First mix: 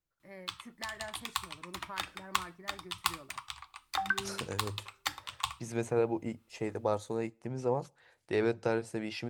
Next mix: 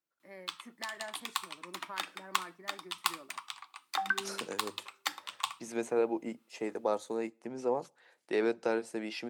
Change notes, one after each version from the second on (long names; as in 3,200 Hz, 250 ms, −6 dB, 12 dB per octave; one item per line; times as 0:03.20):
master: add high-pass filter 210 Hz 24 dB per octave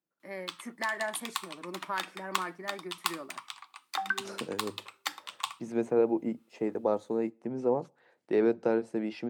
first voice +9.5 dB
second voice: add spectral tilt −3.5 dB per octave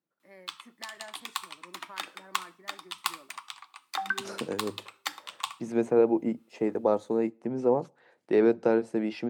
first voice −12.0 dB
second voice +3.5 dB
background: send +7.5 dB